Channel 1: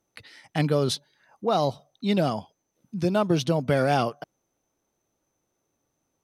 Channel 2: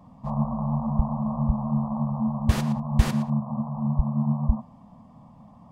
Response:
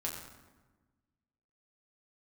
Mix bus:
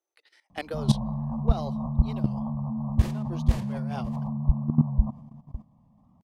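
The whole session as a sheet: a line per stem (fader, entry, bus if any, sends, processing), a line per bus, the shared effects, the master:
0:01.89 −2 dB → 0:02.21 −10.5 dB, 0.00 s, no send, no echo send, elliptic high-pass filter 330 Hz
−0.5 dB, 0.50 s, no send, echo send −20.5 dB, low-shelf EQ 260 Hz +10 dB; notch filter 1,400 Hz, Q 7.8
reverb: not used
echo: single-tap delay 551 ms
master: noise gate −36 dBFS, range −7 dB; output level in coarse steps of 15 dB; wow of a warped record 45 rpm, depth 100 cents

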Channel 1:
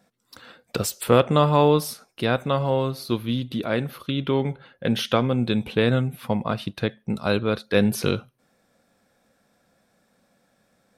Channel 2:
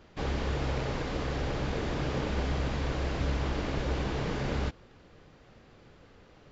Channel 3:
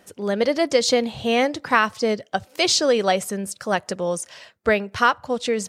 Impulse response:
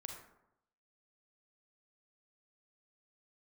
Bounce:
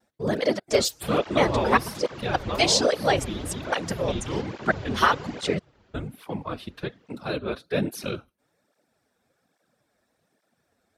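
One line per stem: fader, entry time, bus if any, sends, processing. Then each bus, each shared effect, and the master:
−3.5 dB, 0.00 s, muted 0:05.14–0:05.95, no send, high-pass filter 150 Hz
−1.5 dB, 0.85 s, no send, no processing
+1.0 dB, 0.00 s, no send, gate pattern "..xxxx.xx..x" 153 BPM −60 dB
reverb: not used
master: random phases in short frames; pitch vibrato 0.42 Hz 11 cents; through-zero flanger with one copy inverted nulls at 1.2 Hz, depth 7.4 ms

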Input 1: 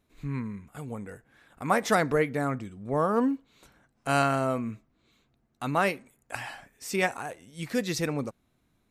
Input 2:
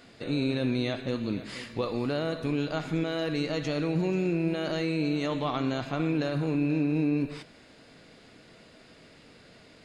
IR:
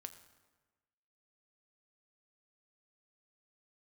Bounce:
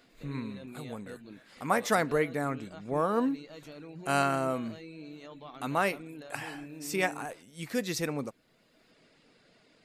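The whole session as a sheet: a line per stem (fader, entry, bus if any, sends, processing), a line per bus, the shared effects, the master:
−2.5 dB, 0.00 s, no send, high-shelf EQ 12,000 Hz +6 dB
−7.5 dB, 0.00 s, no send, reverb reduction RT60 0.53 s; automatic ducking −8 dB, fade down 0.30 s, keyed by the first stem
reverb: not used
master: parametric band 68 Hz −11.5 dB 1.2 octaves

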